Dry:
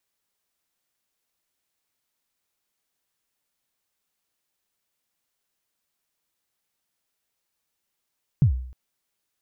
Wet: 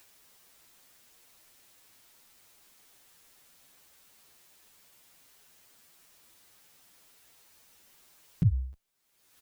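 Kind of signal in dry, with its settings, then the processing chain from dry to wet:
kick drum length 0.31 s, from 160 Hz, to 63 Hz, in 99 ms, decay 0.61 s, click off, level -11 dB
upward compressor, threshold -39 dBFS; endless flanger 8.6 ms +2.5 Hz

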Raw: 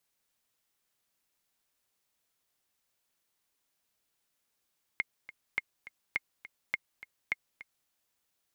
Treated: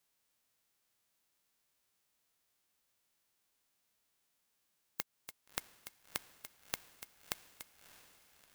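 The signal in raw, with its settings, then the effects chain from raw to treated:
metronome 207 bpm, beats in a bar 2, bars 5, 2.14 kHz, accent 16.5 dB -16 dBFS
formants flattened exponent 0.1; compression, threshold -34 dBFS; echo that smears into a reverb 644 ms, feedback 54%, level -15.5 dB

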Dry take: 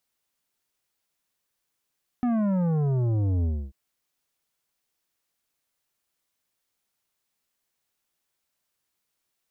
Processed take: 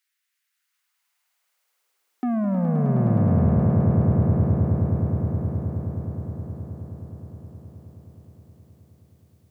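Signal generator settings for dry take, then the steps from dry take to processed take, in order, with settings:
sub drop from 250 Hz, over 1.49 s, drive 10.5 dB, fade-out 0.28 s, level -22.5 dB
high-pass sweep 1.8 kHz -> 99 Hz, 0.43–3.53 s; on a send: echo with a slow build-up 105 ms, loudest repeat 8, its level -6 dB

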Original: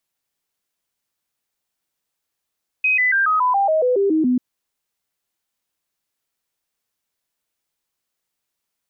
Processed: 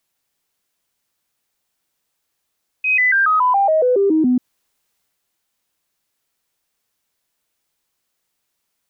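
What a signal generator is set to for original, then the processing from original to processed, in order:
stepped sine 2.52 kHz down, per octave 3, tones 11, 0.14 s, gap 0.00 s -14 dBFS
transient shaper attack -9 dB, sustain +3 dB; in parallel at 0 dB: peak limiter -23 dBFS

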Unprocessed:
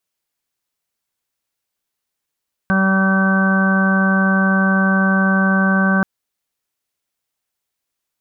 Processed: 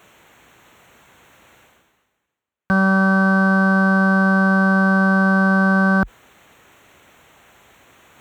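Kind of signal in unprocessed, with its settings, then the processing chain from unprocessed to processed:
steady additive tone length 3.33 s, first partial 192 Hz, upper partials -17/-11/-13/-18/-9.5/-20/-4 dB, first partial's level -14 dB
local Wiener filter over 9 samples; high-pass 43 Hz 24 dB/octave; reverse; upward compressor, threshold -22 dBFS; reverse

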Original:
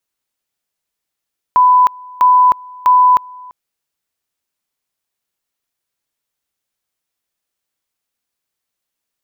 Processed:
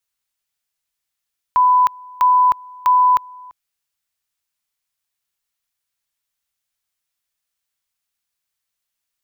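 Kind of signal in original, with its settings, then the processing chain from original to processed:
two-level tone 999 Hz -5.5 dBFS, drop 25.5 dB, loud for 0.31 s, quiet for 0.34 s, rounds 3
peaking EQ 340 Hz -11 dB 2.4 oct

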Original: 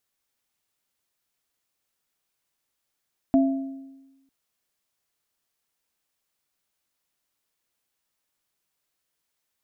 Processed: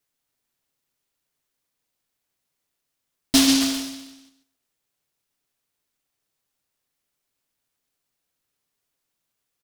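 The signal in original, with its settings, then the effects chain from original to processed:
sine partials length 0.95 s, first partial 270 Hz, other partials 672 Hz, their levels -7 dB, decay 1.14 s, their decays 0.77 s, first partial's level -14 dB
comb 7.3 ms; on a send: repeats whose band climbs or falls 134 ms, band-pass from 350 Hz, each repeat 0.7 oct, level -6.5 dB; on the sum: delay time shaken by noise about 4.2 kHz, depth 0.36 ms

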